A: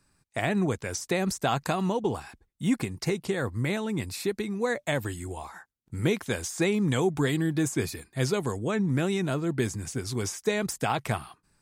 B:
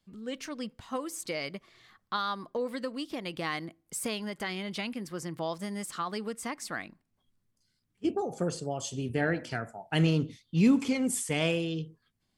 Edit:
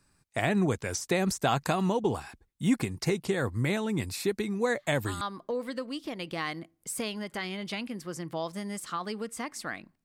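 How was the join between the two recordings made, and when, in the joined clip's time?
A
4.66 add B from 1.72 s 0.55 s -9.5 dB
5.21 switch to B from 2.27 s

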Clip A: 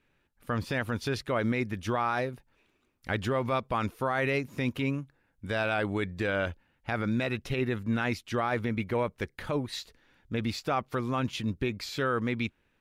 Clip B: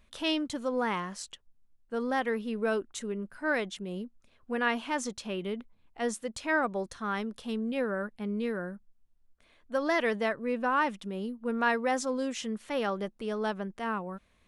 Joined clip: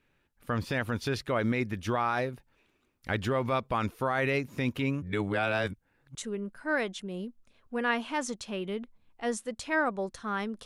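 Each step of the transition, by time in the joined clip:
clip A
5.02–6.15 reverse
6.15 switch to clip B from 2.92 s

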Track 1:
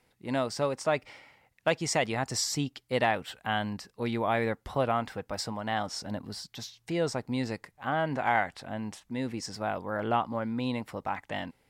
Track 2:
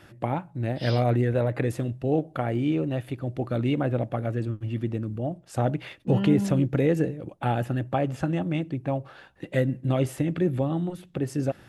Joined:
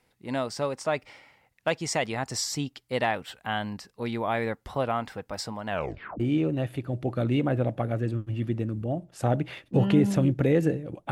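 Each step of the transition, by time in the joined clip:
track 1
5.67 tape stop 0.53 s
6.2 switch to track 2 from 2.54 s

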